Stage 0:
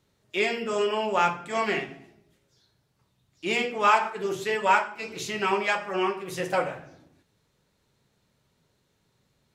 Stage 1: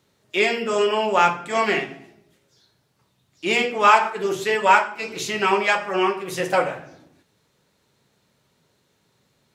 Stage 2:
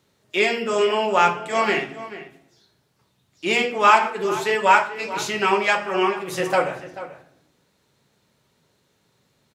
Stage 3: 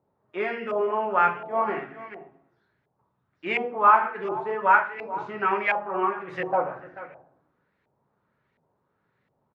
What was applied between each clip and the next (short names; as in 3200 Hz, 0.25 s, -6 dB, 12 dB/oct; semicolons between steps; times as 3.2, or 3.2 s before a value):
HPF 150 Hz 6 dB/oct; gain +6 dB
outdoor echo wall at 75 m, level -14 dB
LFO low-pass saw up 1.4 Hz 750–2100 Hz; gain -8 dB